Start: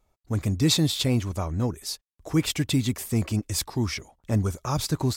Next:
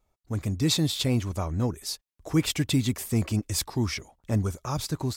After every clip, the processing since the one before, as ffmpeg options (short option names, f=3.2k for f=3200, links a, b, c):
-af "dynaudnorm=f=220:g=9:m=3dB,volume=-3.5dB"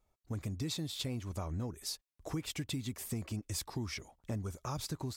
-af "acompressor=threshold=-31dB:ratio=6,volume=-4dB"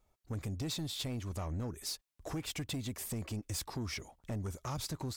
-af "asoftclip=type=tanh:threshold=-35.5dB,volume=3dB"